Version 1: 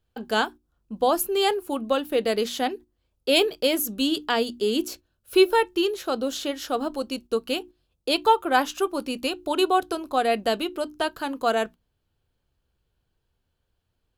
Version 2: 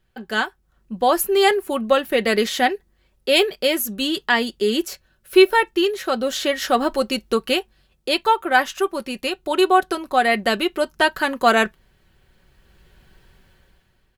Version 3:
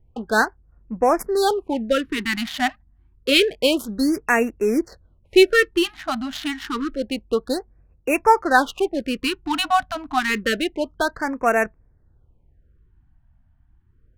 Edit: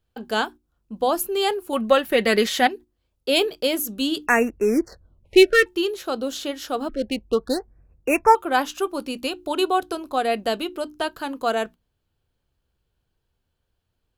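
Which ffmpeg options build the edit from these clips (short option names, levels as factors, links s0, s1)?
-filter_complex "[2:a]asplit=2[s0][s1];[0:a]asplit=4[s2][s3][s4][s5];[s2]atrim=end=1.732[s6];[1:a]atrim=start=1.728:end=2.672[s7];[s3]atrim=start=2.668:end=4.272[s8];[s0]atrim=start=4.268:end=5.662[s9];[s4]atrim=start=5.658:end=6.892[s10];[s1]atrim=start=6.888:end=8.352[s11];[s5]atrim=start=8.348[s12];[s6][s7]acrossfade=d=0.004:c1=hsin:c2=hsin[s13];[s13][s8]acrossfade=d=0.004:c1=hsin:c2=hsin[s14];[s14][s9]acrossfade=d=0.004:c1=hsin:c2=hsin[s15];[s15][s10]acrossfade=d=0.004:c1=hsin:c2=hsin[s16];[s16][s11]acrossfade=d=0.004:c1=hsin:c2=hsin[s17];[s17][s12]acrossfade=d=0.004:c1=hsin:c2=hsin"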